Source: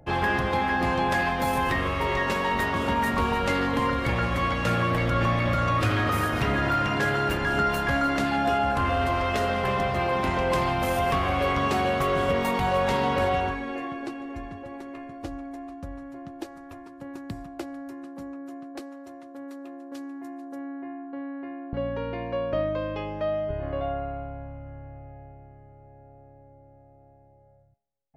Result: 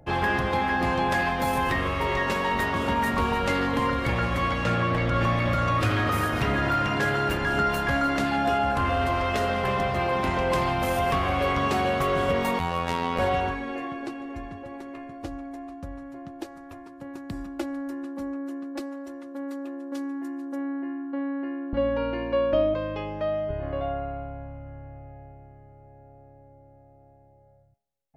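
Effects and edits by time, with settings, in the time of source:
4.64–5.14 air absorption 50 m
12.59–13.19 robotiser 85.7 Hz
17.32–22.74 comb 3.5 ms, depth 94%

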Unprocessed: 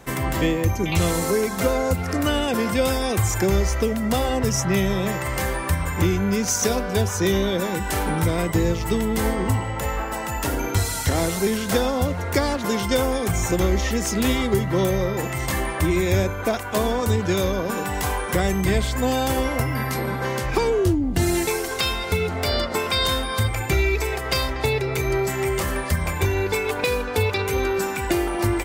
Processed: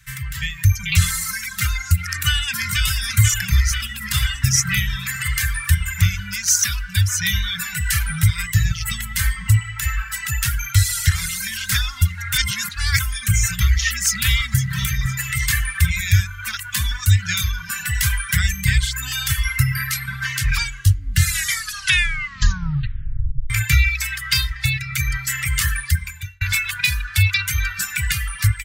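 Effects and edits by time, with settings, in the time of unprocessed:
2.11–2.83 echo throw 0.49 s, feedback 80%, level -4.5 dB
12.33–13 reverse
13.78–14.79 echo throw 0.51 s, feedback 50%, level -11.5 dB
21.26 tape stop 2.24 s
25.63–26.41 fade out
whole clip: elliptic band-stop 130–1600 Hz, stop band 60 dB; reverb removal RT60 1.9 s; AGC gain up to 13 dB; gain -1.5 dB

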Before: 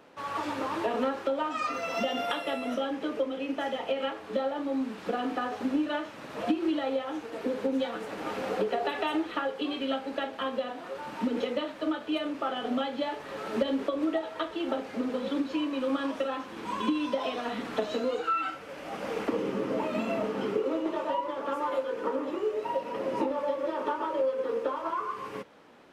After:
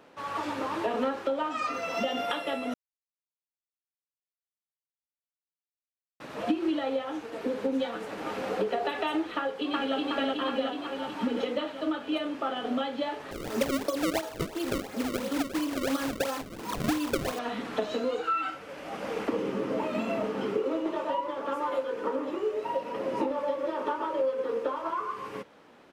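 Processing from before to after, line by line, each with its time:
2.74–6.2 mute
9.36–9.96 echo throw 0.37 s, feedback 70%, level -0.5 dB
13.31–17.39 decimation with a swept rate 30×, swing 160% 2.9 Hz

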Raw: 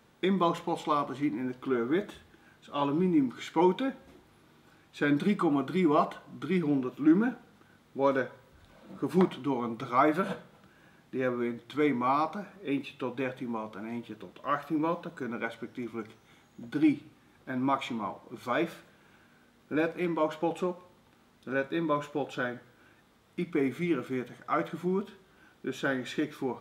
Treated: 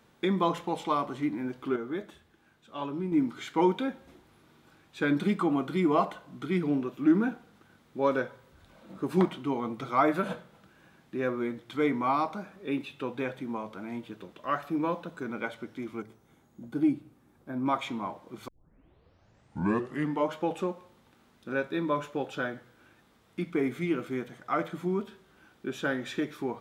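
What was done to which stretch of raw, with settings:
1.76–3.12 gain -6 dB
16.02–17.66 bell 3000 Hz -11 dB 2.7 oct
18.48 tape start 1.82 s

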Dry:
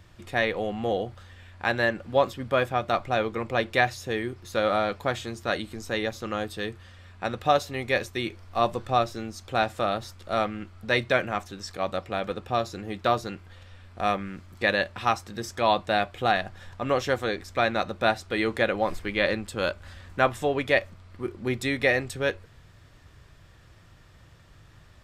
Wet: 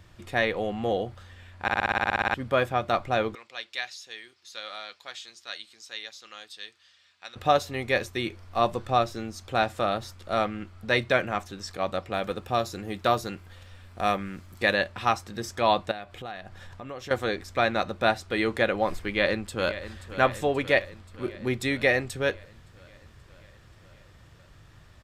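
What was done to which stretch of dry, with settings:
1.62 stutter in place 0.06 s, 12 plays
3.35–7.36 band-pass 4600 Hz, Q 1.3
12.13–14.74 high shelf 9000 Hz +10.5 dB
15.91–17.11 compressor 3:1, threshold -39 dBFS
19.05–20.01 echo throw 0.53 s, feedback 70%, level -13 dB

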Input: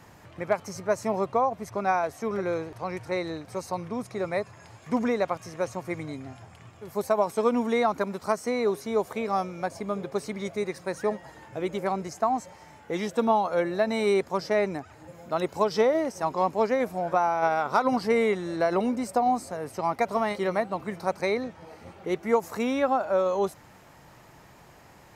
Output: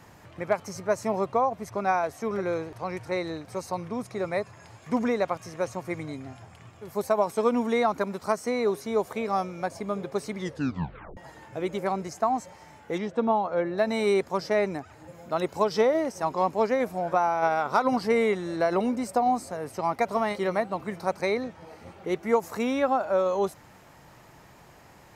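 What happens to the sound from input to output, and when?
10.38 tape stop 0.79 s
12.98–13.78 tape spacing loss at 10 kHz 21 dB

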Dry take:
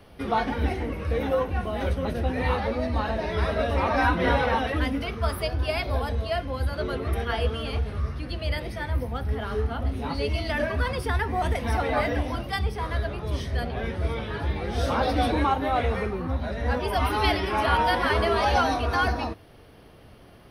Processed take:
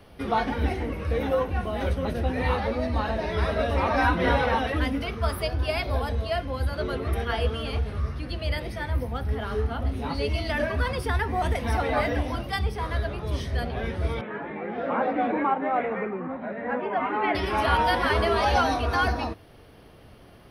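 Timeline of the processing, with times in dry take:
14.21–17.35 Chebyshev band-pass 190–2200 Hz, order 3

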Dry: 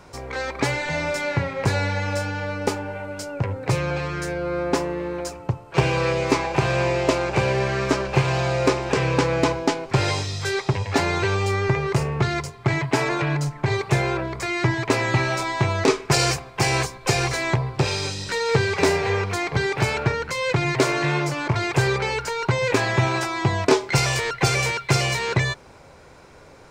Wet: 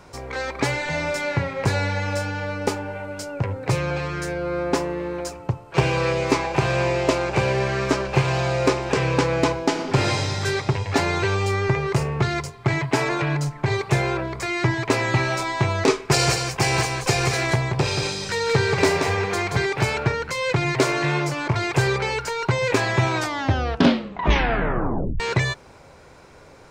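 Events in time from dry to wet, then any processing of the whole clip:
9.66–10.41 reverb throw, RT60 2.4 s, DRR 3.5 dB
15.92–19.66 echo 0.179 s -5.5 dB
23.09 tape stop 2.11 s

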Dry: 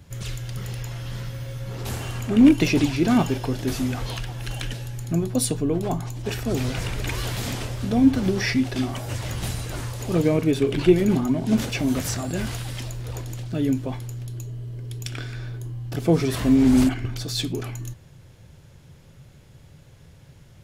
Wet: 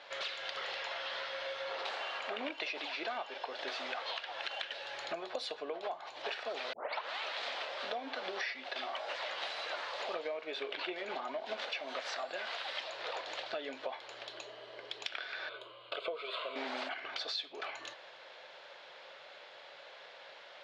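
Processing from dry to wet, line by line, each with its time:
6.73 tape start 0.63 s
15.49–16.56 fixed phaser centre 1200 Hz, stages 8
whole clip: Chebyshev band-pass 580–4100 Hz, order 3; compressor 10:1, threshold -46 dBFS; gain +9.5 dB

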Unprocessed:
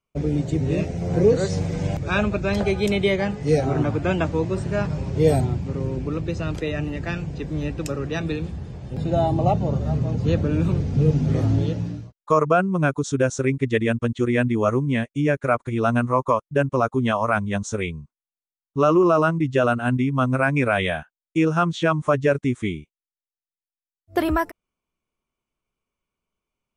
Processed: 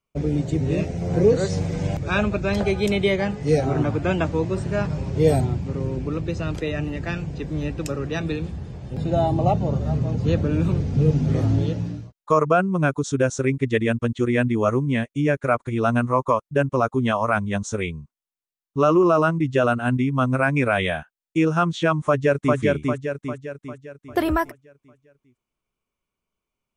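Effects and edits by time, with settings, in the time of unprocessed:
22.03–22.57 echo throw 0.4 s, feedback 50%, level -2 dB

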